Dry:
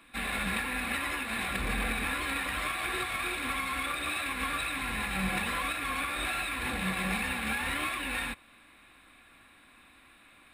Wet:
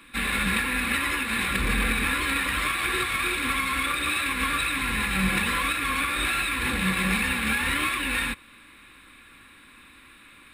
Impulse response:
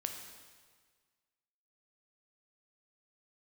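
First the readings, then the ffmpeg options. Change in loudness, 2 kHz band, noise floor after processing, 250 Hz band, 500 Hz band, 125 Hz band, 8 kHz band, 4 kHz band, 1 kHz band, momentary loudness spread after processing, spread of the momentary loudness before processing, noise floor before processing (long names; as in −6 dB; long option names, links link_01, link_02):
+7.0 dB, +7.0 dB, −52 dBFS, +7.0 dB, +4.0 dB, +7.5 dB, +7.5 dB, +7.5 dB, +5.5 dB, 2 LU, 2 LU, −58 dBFS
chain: -af "equalizer=frequency=700:width=3.3:gain=-14,volume=7.5dB"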